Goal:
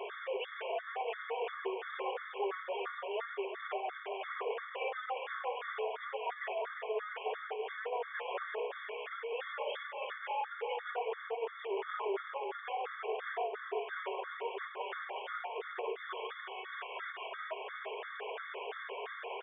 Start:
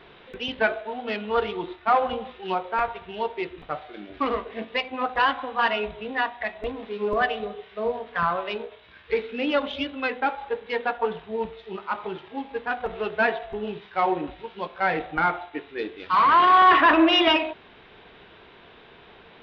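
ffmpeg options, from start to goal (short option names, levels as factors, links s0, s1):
-filter_complex "[0:a]aeval=exprs='val(0)+0.5*0.0562*sgn(val(0))':c=same,aphaser=in_gain=1:out_gain=1:delay=3.8:decay=0.33:speed=0.82:type=triangular,aeval=exprs='0.562*sin(PI/2*8.91*val(0)/0.562)':c=same,agate=range=0.0398:threshold=0.562:ratio=16:detection=peak,acrossover=split=2800[s0][s1];[s1]acompressor=threshold=0.00224:ratio=4:attack=1:release=60[s2];[s0][s2]amix=inputs=2:normalize=0,afftfilt=real='re*between(b*sr/4096,360,3600)':imag='im*between(b*sr/4096,360,3600)':win_size=4096:overlap=0.75,acompressor=threshold=0.0224:ratio=2.5,asplit=2[s3][s4];[s4]adelay=354,lowpass=f=2300:p=1,volume=0.473,asplit=2[s5][s6];[s6]adelay=354,lowpass=f=2300:p=1,volume=0.24,asplit=2[s7][s8];[s8]adelay=354,lowpass=f=2300:p=1,volume=0.24[s9];[s3][s5][s7][s9]amix=inputs=4:normalize=0,afreqshift=15,afftfilt=real='re*gt(sin(2*PI*2.9*pts/sr)*(1-2*mod(floor(b*sr/1024/1100),2)),0)':imag='im*gt(sin(2*PI*2.9*pts/sr)*(1-2*mod(floor(b*sr/1024/1100),2)),0)':win_size=1024:overlap=0.75,volume=0.794"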